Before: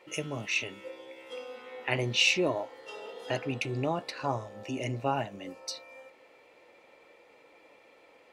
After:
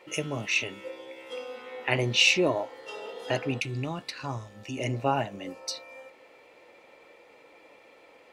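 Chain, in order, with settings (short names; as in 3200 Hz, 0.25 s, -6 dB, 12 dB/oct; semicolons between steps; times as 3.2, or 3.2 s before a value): 3.6–4.78 bell 590 Hz -11.5 dB 2 oct; gain +3.5 dB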